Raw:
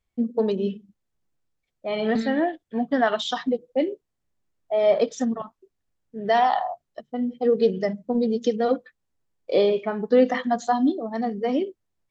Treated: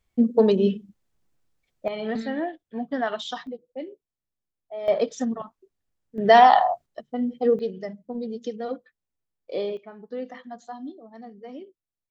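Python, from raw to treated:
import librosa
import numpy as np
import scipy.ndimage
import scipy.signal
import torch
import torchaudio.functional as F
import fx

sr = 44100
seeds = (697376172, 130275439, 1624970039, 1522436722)

y = fx.gain(x, sr, db=fx.steps((0.0, 5.0), (1.88, -5.5), (3.47, -12.0), (4.88, -2.0), (6.18, 6.5), (6.86, 0.0), (7.59, -9.0), (9.77, -16.0)))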